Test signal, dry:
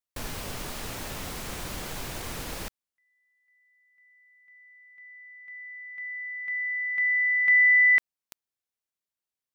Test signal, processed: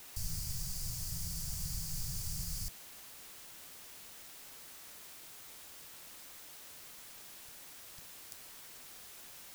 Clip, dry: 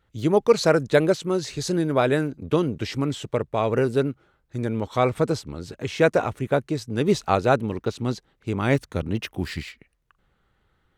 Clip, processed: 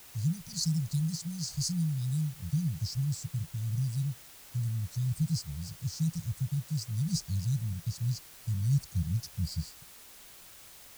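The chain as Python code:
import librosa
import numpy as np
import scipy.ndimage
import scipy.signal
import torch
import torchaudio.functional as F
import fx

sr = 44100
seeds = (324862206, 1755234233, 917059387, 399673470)

y = scipy.signal.sosfilt(scipy.signal.cheby1(5, 1.0, [170.0, 4600.0], 'bandstop', fs=sr, output='sos'), x)
y = fx.dmg_noise_colour(y, sr, seeds[0], colour='white', level_db=-52.0)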